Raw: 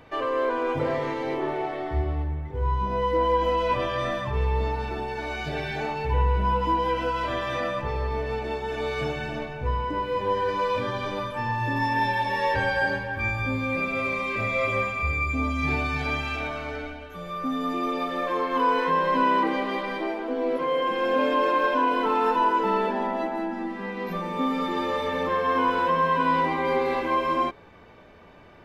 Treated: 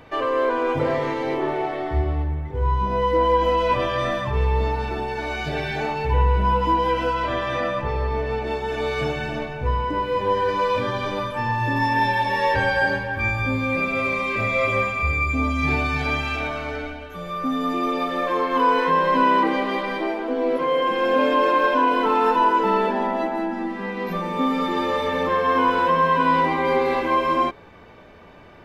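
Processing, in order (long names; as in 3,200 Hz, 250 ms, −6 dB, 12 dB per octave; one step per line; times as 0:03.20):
0:07.14–0:08.47: high-shelf EQ 5,500 Hz −7 dB
level +4 dB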